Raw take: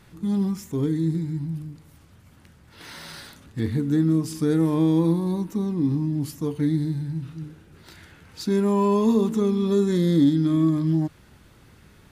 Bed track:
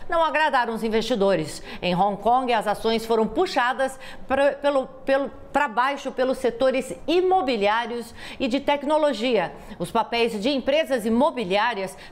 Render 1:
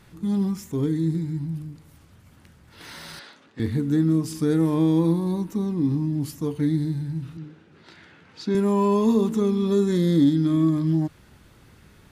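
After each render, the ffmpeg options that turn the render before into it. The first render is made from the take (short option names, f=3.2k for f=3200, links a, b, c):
-filter_complex "[0:a]asettb=1/sr,asplit=3[a][b][c];[a]atrim=end=3.194[d];[b]atrim=start=3.19:end=3.6,asetpts=PTS-STARTPTS,afade=t=in:d=0.004:c=qsin,afade=t=out:st=0.406:d=0.004:c=qsin,highpass=330,lowpass=4.5k[e];[c]atrim=start=3.596[f];[d][e]acrossfade=d=0.004:c1=hsin:c2=qsin[g];[g][f]acrossfade=d=0.004:c1=qsin:c2=hsin,asettb=1/sr,asplit=3[h][i][j];[h]atrim=end=7.374[k];[i]atrim=start=7.37:end=8.55,asetpts=PTS-STARTPTS,afade=t=in:d=0.004:c=qsin,afade=t=out:st=1.176:d=0.004:c=qsin,highpass=160,lowpass=4.5k[l];[j]atrim=start=8.546[m];[k][l]acrossfade=d=0.004:c1=hsin:c2=qsin[n];[n][m]acrossfade=d=0.004:c1=qsin:c2=hsin"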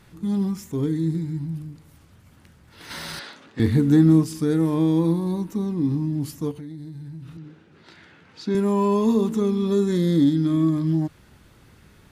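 -filter_complex "[0:a]asettb=1/sr,asplit=3[a][b][c];[a]atrim=end=2.904[d];[b]atrim=start=2.9:end=4.24,asetpts=PTS-STARTPTS,afade=t=in:d=0.004:c=qsin,afade=t=out:st=1.336:d=0.004:c=qsin,acontrast=52[e];[c]atrim=start=4.236[f];[d][e]acrossfade=d=0.004:c1=hsin:c2=qsin[g];[g][f]acrossfade=d=0.004:c1=qsin:c2=hsin,asettb=1/sr,asplit=3[h][i][j];[h]atrim=end=6.514[k];[i]atrim=start=6.51:end=8.46,asetpts=PTS-STARTPTS,afade=t=in:d=0.004:c=qsin,afade=t=out:st=1.946:d=0.004:c=qsin,acompressor=threshold=-35dB:ratio=5:attack=3.2:release=140:knee=1:detection=peak[l];[j]atrim=start=8.456[m];[k][l]acrossfade=d=0.004:c1=hsin:c2=qsin[n];[n][m]acrossfade=d=0.004:c1=qsin:c2=hsin"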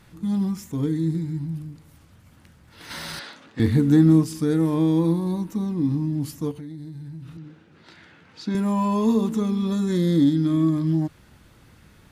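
-af "bandreject=f=400:w=12"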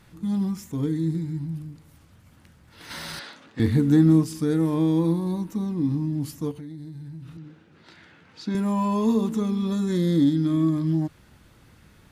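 -af "volume=-1.5dB"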